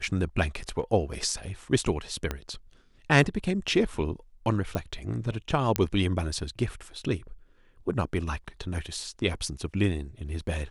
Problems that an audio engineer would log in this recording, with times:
0:02.31: click −15 dBFS
0:04.75: click −17 dBFS
0:05.76: click −7 dBFS

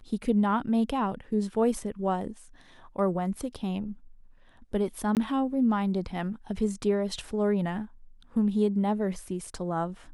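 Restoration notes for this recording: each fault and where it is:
0:05.15–0:05.17: drop-out 18 ms

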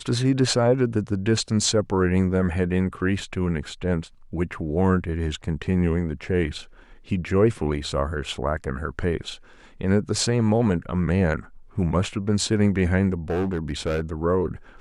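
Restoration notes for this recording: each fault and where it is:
0:13.30–0:14.02: clipping −20.5 dBFS

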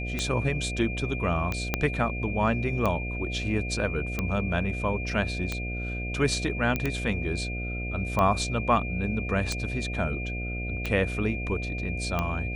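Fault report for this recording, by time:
mains buzz 60 Hz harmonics 12 −33 dBFS
scratch tick 45 rpm −14 dBFS
whistle 2,400 Hz −35 dBFS
0:01.74: click −9 dBFS
0:06.76: click −14 dBFS

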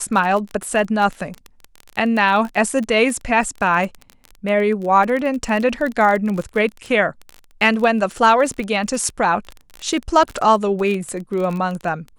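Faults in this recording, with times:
surface crackle 22 per second −23 dBFS

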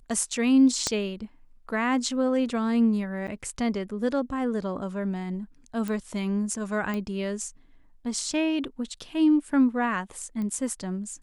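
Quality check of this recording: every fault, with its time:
0:00.87: click −11 dBFS
0:03.27–0:03.28: drop-out 7.6 ms
0:05.88: click
0:06.94: click −19 dBFS
0:10.42: click −23 dBFS

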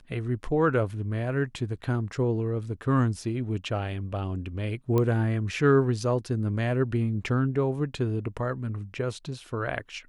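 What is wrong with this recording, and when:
0:04.98: click −14 dBFS

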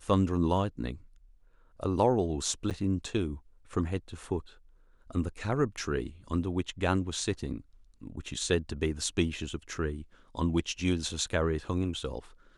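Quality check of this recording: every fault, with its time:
0:02.70–0:02.71: drop-out 7.8 ms

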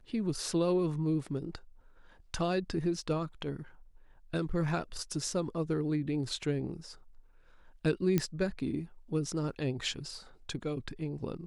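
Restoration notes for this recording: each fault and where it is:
0:08.18: click −14 dBFS

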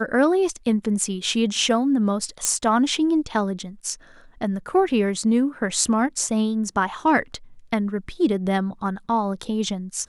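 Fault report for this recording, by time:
0:02.45: click −5 dBFS

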